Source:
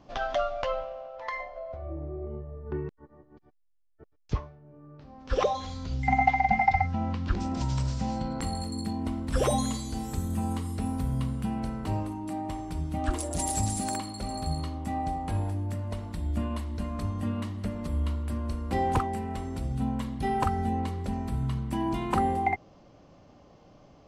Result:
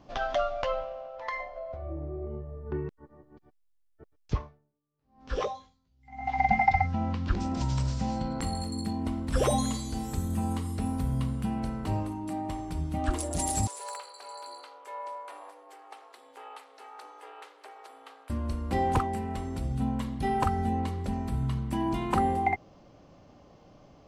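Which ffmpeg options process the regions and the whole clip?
ffmpeg -i in.wav -filter_complex "[0:a]asettb=1/sr,asplit=3[link_01][link_02][link_03];[link_01]atrim=end=4.384[link_04];[link_02]atrim=start=4.38:end=6.39,asetpts=PTS-STARTPTS,afade=type=in:duration=0.004:curve=qsin,afade=type=out:start_time=2.006:duration=0.004:curve=qsin,acompressor=threshold=-35dB:ratio=1.5:attack=3.2:release=140:knee=1:detection=peak,asplit=2[link_05][link_06];[link_06]adelay=18,volume=-4.5dB[link_07];[link_05][link_07]amix=inputs=2:normalize=0,atrim=end_sample=88641,aeval=exprs='val(0)*pow(10,-37*(0.5-0.5*cos(2*PI*1*n/s))/20)':channel_layout=same[link_08];[link_03]atrim=start=6.386[link_09];[link_04][link_08]acrossfade=duration=0.004:curve1=hsin:curve2=qsin[link_10];[link_10][link_09]acrossfade=duration=0.004:curve1=qsin:curve2=hsin,asettb=1/sr,asplit=3[link_11][link_12][link_13];[link_11]atrim=end=13.674[link_14];[link_12]atrim=start=13.67:end=18.3,asetpts=PTS-STARTPTS,afade=type=in:duration=0.004:curve=qsin,afade=type=out:start_time=4.626:duration=0.004:curve=qsin,aeval=exprs='val(0)*sin(2*PI*200*n/s)':channel_layout=same,highpass=frequency=680:width=0.5412,highpass=frequency=680:width=1.3066,highshelf=frequency=4200:gain=-6.5[link_15];[link_13]atrim=start=18.296[link_16];[link_14][link_15]acrossfade=duration=0.004:curve1=hsin:curve2=qsin[link_17];[link_17][link_16]acrossfade=duration=0.004:curve1=qsin:curve2=hsin" out.wav

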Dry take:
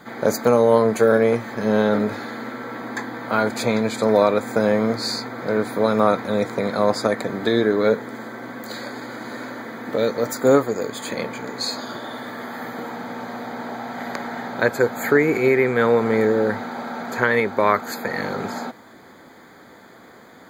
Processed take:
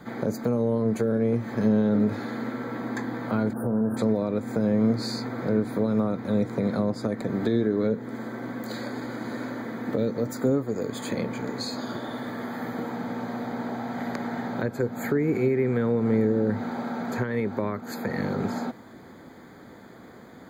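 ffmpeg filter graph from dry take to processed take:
ffmpeg -i in.wav -filter_complex "[0:a]asettb=1/sr,asplit=3[link_01][link_02][link_03];[link_01]atrim=end=3.534[link_04];[link_02]atrim=start=3.53:end=3.97,asetpts=PTS-STARTPTS,afade=type=in:duration=0.004:curve=qsin,afade=type=out:start_time=0.436:duration=0.004:curve=qsin,asuperstop=centerf=4100:order=20:qfactor=0.53,asplit=2[link_05][link_06];[link_06]adelay=41,volume=-12dB[link_07];[link_05][link_07]amix=inputs=2:normalize=0,atrim=end_sample=19404,acompressor=threshold=-23dB:ratio=2.5:attack=3.2:release=140:knee=1:detection=peak[link_08];[link_03]atrim=start=3.966[link_09];[link_04][link_08]acrossfade=duration=0.004:curve1=hsin:curve2=qsin[link_10];[link_10][link_09]acrossfade=duration=0.004:curve1=qsin:curve2=hsin,lowshelf=frequency=390:gain=11,alimiter=limit=-5.5dB:level=0:latency=1:release=419,acrossover=split=380[link_11][link_12];[link_12]acompressor=threshold=-25dB:ratio=6[link_13];[link_11][link_13]amix=inputs=2:normalize=0,volume=-5.5dB" out.wav

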